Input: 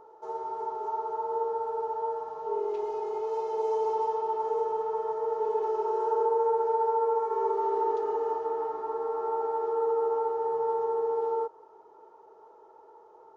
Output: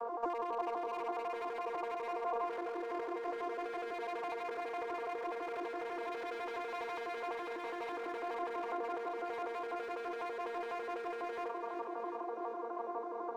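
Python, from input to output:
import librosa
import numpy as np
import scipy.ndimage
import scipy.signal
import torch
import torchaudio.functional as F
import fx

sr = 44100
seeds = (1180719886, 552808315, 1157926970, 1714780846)

y = fx.vocoder_arp(x, sr, chord='bare fifth', root=58, every_ms=83)
y = np.clip(10.0 ** (31.0 / 20.0) * y, -1.0, 1.0) / 10.0 ** (31.0 / 20.0)
y = fx.over_compress(y, sr, threshold_db=-44.0, ratio=-1.0)
y = fx.tilt_eq(y, sr, slope=4.0)
y = 10.0 ** (-33.0 / 20.0) * np.tanh(y / 10.0 ** (-33.0 / 20.0))
y = fx.lowpass(y, sr, hz=1500.0, slope=6)
y = fx.echo_feedback(y, sr, ms=364, feedback_pct=58, wet_db=-8)
y = F.gain(torch.from_numpy(y), 8.5).numpy()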